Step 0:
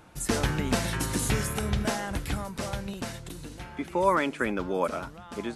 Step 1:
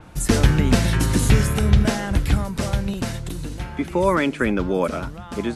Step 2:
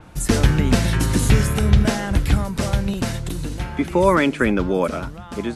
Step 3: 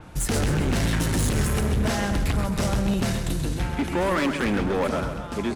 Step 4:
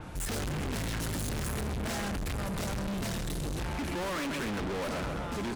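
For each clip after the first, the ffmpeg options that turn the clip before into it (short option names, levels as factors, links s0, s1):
-filter_complex "[0:a]lowshelf=f=180:g=8.5,acrossover=split=710|1200[s0][s1][s2];[s1]acompressor=threshold=0.00501:ratio=6[s3];[s0][s3][s2]amix=inputs=3:normalize=0,adynamicequalizer=threshold=0.00447:dfrequency=5900:dqfactor=0.7:tfrequency=5900:tqfactor=0.7:attack=5:release=100:ratio=0.375:range=2:mode=cutabove:tftype=highshelf,volume=2.11"
-af "dynaudnorm=f=210:g=11:m=1.78"
-af "alimiter=limit=0.316:level=0:latency=1:release=34,volume=10.6,asoftclip=hard,volume=0.0944,aecho=1:1:132|264|396|528|660|792:0.376|0.188|0.094|0.047|0.0235|0.0117"
-af "volume=47.3,asoftclip=hard,volume=0.0211,volume=1.12"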